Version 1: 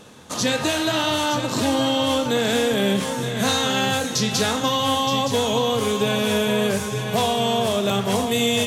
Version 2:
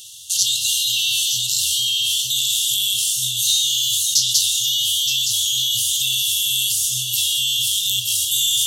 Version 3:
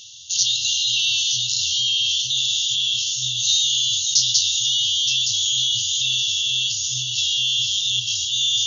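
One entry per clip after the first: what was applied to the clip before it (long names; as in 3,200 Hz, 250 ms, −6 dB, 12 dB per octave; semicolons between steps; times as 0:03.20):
brick-wall band-stop 130–2,700 Hz; spectral tilt +4 dB per octave; in parallel at −3 dB: compressor whose output falls as the input rises −24 dBFS, ratio −0.5; on the sum: level −2 dB
linear-phase brick-wall low-pass 7,000 Hz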